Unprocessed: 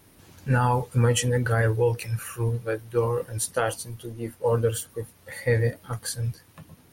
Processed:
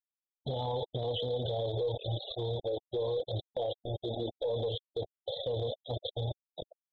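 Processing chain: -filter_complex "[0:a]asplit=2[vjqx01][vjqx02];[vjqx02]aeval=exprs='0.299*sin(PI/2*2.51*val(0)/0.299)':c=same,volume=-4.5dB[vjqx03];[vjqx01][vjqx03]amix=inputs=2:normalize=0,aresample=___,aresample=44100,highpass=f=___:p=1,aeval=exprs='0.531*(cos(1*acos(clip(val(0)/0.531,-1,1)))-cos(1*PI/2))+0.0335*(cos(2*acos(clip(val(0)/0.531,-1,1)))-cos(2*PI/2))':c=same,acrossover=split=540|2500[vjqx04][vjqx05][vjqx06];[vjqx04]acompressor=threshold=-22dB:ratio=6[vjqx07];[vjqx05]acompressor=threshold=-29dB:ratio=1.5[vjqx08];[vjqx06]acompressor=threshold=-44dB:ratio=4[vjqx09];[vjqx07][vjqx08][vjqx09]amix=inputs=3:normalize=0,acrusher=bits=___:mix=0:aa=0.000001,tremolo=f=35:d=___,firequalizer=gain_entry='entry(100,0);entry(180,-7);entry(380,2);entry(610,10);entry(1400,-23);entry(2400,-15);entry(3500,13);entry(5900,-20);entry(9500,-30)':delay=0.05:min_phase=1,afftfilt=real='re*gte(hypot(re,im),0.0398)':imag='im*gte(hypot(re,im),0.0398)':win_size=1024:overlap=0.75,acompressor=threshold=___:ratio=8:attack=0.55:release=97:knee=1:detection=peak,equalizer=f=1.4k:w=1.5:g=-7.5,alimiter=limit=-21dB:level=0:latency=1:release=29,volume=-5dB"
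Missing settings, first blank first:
8000, 120, 4, 0.261, -20dB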